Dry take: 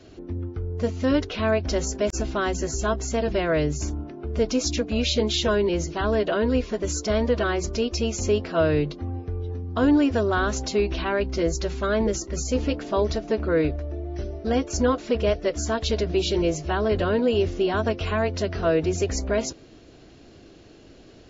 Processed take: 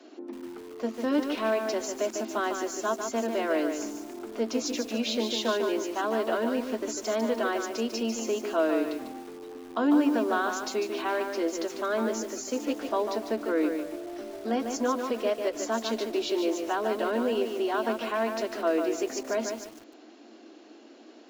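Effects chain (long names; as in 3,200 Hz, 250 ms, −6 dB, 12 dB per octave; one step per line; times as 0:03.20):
in parallel at −0.5 dB: downward compressor 6 to 1, threshold −32 dBFS, peak gain reduction 15.5 dB
on the sum: Chebyshev high-pass with heavy ripple 220 Hz, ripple 6 dB
feedback echo at a low word length 148 ms, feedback 35%, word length 7 bits, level −5.5 dB
level −3 dB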